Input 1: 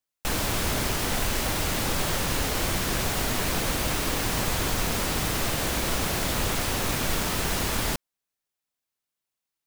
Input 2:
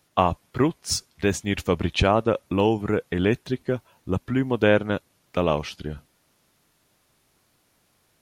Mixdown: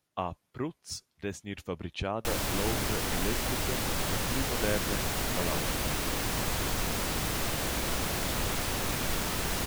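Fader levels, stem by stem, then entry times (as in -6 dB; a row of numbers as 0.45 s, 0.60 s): -4.5 dB, -13.5 dB; 2.00 s, 0.00 s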